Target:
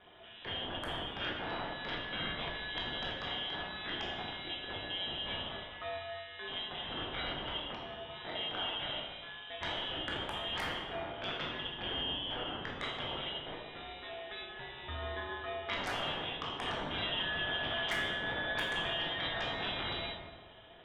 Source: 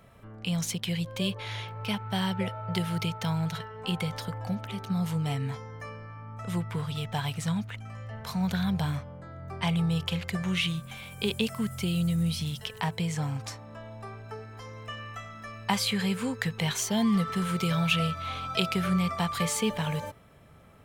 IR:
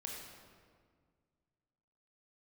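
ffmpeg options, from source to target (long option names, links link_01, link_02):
-filter_complex "[0:a]aeval=exprs='val(0)*sin(2*PI*880*n/s)':channel_layout=same,equalizer=frequency=110:width_type=o:width=3:gain=-9,asplit=2[link_01][link_02];[link_02]acompressor=threshold=-41dB:ratio=6,volume=1.5dB[link_03];[link_01][link_03]amix=inputs=2:normalize=0,tremolo=f=190:d=0.75,lowpass=frequency=3300:width_type=q:width=0.5098,lowpass=frequency=3300:width_type=q:width=0.6013,lowpass=frequency=3300:width_type=q:width=0.9,lowpass=frequency=3300:width_type=q:width=2.563,afreqshift=-3900,acrossover=split=630[link_04][link_05];[link_04]aeval=exprs='0.0106*sin(PI/2*7.08*val(0)/0.0106)':channel_layout=same[link_06];[link_05]equalizer=frequency=2700:width_type=o:width=0.52:gain=-13.5[link_07];[link_06][link_07]amix=inputs=2:normalize=0[link_08];[1:a]atrim=start_sample=2205,asetrate=66150,aresample=44100[link_09];[link_08][link_09]afir=irnorm=-1:irlink=0,volume=7dB"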